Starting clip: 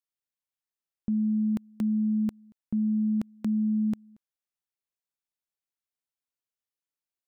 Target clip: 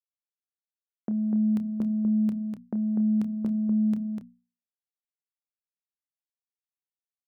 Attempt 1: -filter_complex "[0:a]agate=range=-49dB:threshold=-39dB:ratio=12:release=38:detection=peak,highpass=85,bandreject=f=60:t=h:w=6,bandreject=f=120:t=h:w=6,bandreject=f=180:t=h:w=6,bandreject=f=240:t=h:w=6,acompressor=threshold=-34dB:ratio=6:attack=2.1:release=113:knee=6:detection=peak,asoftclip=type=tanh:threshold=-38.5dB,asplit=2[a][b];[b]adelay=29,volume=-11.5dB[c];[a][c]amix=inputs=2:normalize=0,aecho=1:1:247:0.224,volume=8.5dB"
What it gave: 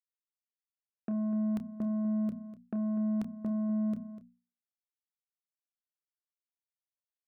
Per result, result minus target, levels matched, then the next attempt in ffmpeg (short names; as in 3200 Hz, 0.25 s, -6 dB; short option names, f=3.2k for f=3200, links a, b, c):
soft clip: distortion +17 dB; echo-to-direct -8.5 dB
-filter_complex "[0:a]agate=range=-49dB:threshold=-39dB:ratio=12:release=38:detection=peak,highpass=85,bandreject=f=60:t=h:w=6,bandreject=f=120:t=h:w=6,bandreject=f=180:t=h:w=6,bandreject=f=240:t=h:w=6,acompressor=threshold=-34dB:ratio=6:attack=2.1:release=113:knee=6:detection=peak,asoftclip=type=tanh:threshold=-27dB,asplit=2[a][b];[b]adelay=29,volume=-11.5dB[c];[a][c]amix=inputs=2:normalize=0,aecho=1:1:247:0.224,volume=8.5dB"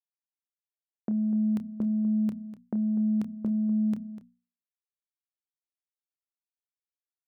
echo-to-direct -8.5 dB
-filter_complex "[0:a]agate=range=-49dB:threshold=-39dB:ratio=12:release=38:detection=peak,highpass=85,bandreject=f=60:t=h:w=6,bandreject=f=120:t=h:w=6,bandreject=f=180:t=h:w=6,bandreject=f=240:t=h:w=6,acompressor=threshold=-34dB:ratio=6:attack=2.1:release=113:knee=6:detection=peak,asoftclip=type=tanh:threshold=-27dB,asplit=2[a][b];[b]adelay=29,volume=-11.5dB[c];[a][c]amix=inputs=2:normalize=0,aecho=1:1:247:0.596,volume=8.5dB"